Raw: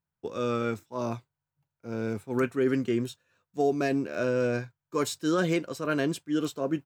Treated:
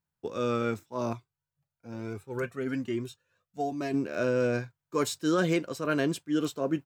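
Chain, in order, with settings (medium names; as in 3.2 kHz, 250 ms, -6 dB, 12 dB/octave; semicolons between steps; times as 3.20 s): 1.13–3.94 s: Shepard-style flanger rising 1.1 Hz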